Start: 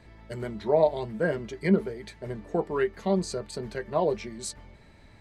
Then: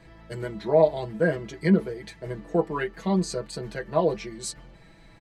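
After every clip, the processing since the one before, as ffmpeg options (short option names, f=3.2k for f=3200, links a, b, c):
-af "aecho=1:1:6.1:0.82"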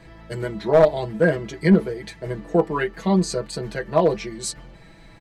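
-af "aeval=exprs='clip(val(0),-1,0.2)':c=same,volume=5dB"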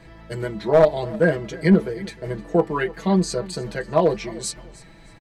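-af "aecho=1:1:308|616:0.0944|0.0264"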